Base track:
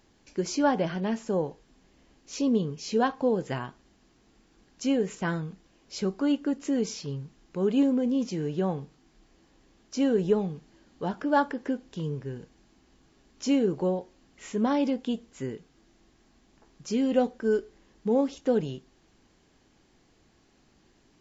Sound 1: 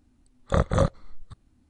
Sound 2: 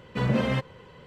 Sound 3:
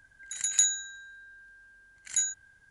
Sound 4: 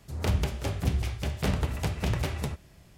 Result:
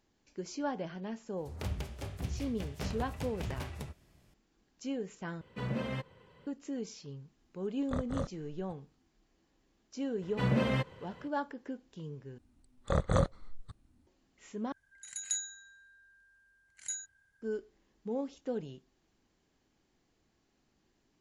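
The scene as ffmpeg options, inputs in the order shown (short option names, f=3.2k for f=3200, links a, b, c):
-filter_complex "[2:a]asplit=2[a][b];[1:a]asplit=2[c][d];[0:a]volume=-11.5dB[e];[d]alimiter=level_in=10dB:limit=-1dB:release=50:level=0:latency=1[f];[e]asplit=4[g][h][i][j];[g]atrim=end=5.414[k];[a]atrim=end=1.06,asetpts=PTS-STARTPTS,volume=-11dB[l];[h]atrim=start=6.466:end=12.384[m];[f]atrim=end=1.69,asetpts=PTS-STARTPTS,volume=-14.5dB[n];[i]atrim=start=14.066:end=14.724[o];[3:a]atrim=end=2.7,asetpts=PTS-STARTPTS,volume=-11dB[p];[j]atrim=start=17.416[q];[4:a]atrim=end=2.97,asetpts=PTS-STARTPTS,volume=-10.5dB,afade=t=in:d=0.004:c=hsin,afade=t=out:st=2.966:d=0.004:c=hsin,adelay=1370[r];[c]atrim=end=1.69,asetpts=PTS-STARTPTS,volume=-15dB,afade=t=in:d=0.004:c=hsin,afade=t=out:st=1.686:d=0.004:c=hsin,adelay=7390[s];[b]atrim=end=1.06,asetpts=PTS-STARTPTS,volume=-4.5dB,afade=t=in:d=0.004:c=hsin,afade=t=out:st=1.056:d=0.004:c=hsin,adelay=10220[t];[k][l]acrossfade=d=0.004:c1=hsin:c2=hsin[u];[u][m]acrossfade=d=0.004:c1=hsin:c2=hsin[v];[v][n]acrossfade=d=0.004:c1=hsin:c2=hsin[w];[w][o]acrossfade=d=0.004:c1=hsin:c2=hsin[x];[x][p]acrossfade=d=0.004:c1=hsin:c2=hsin[y];[y][q]acrossfade=d=0.004:c1=hsin:c2=hsin[z];[z][r][s][t]amix=inputs=4:normalize=0"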